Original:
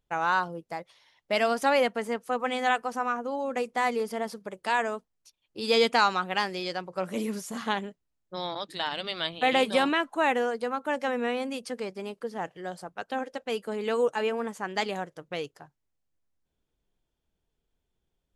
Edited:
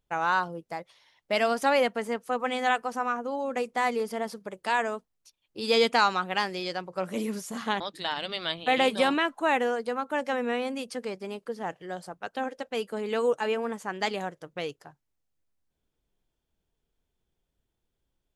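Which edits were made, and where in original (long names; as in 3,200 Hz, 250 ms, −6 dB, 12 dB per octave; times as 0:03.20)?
0:07.80–0:08.55: remove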